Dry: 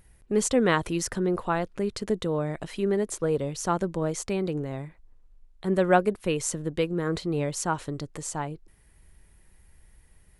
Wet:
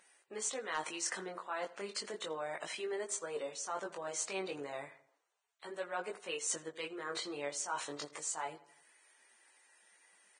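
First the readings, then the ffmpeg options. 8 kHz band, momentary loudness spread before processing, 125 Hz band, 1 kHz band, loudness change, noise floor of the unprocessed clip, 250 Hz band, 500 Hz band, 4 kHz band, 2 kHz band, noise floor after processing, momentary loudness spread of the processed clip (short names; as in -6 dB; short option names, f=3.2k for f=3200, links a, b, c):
-5.0 dB, 12 LU, -29.0 dB, -11.5 dB, -12.0 dB, -58 dBFS, -21.5 dB, -14.5 dB, -4.5 dB, -8.5 dB, -76 dBFS, 7 LU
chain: -filter_complex "[0:a]highpass=720,areverse,acompressor=threshold=-39dB:ratio=4,areverse,flanger=delay=17.5:depth=3.6:speed=0.33,asoftclip=type=hard:threshold=-30.5dB,asplit=2[a][b];[b]adelay=83,lowpass=f=3.1k:p=1,volume=-17.5dB,asplit=2[c][d];[d]adelay=83,lowpass=f=3.1k:p=1,volume=0.5,asplit=2[e][f];[f]adelay=83,lowpass=f=3.1k:p=1,volume=0.5,asplit=2[g][h];[h]adelay=83,lowpass=f=3.1k:p=1,volume=0.5[i];[c][e][g][i]amix=inputs=4:normalize=0[j];[a][j]amix=inputs=2:normalize=0,volume=4.5dB" -ar 22050 -c:a libvorbis -b:a 16k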